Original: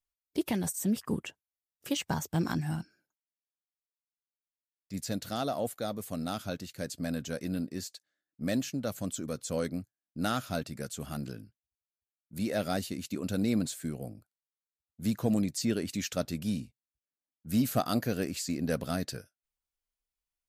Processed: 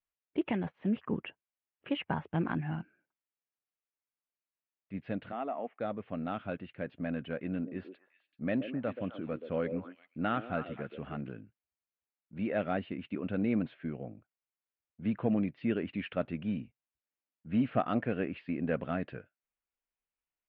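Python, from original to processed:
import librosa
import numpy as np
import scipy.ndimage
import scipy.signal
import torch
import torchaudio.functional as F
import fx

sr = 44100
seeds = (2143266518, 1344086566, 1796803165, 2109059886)

y = fx.cabinet(x, sr, low_hz=250.0, low_slope=24, high_hz=2500.0, hz=(330.0, 530.0, 1500.0), db=(-7, -9, -9), at=(5.31, 5.79), fade=0.02)
y = fx.echo_stepped(y, sr, ms=128, hz=410.0, octaves=1.4, feedback_pct=70, wet_db=-5.5, at=(7.52, 11.21))
y = scipy.signal.sosfilt(scipy.signal.butter(8, 2900.0, 'lowpass', fs=sr, output='sos'), y)
y = fx.low_shelf(y, sr, hz=91.0, db=-11.0)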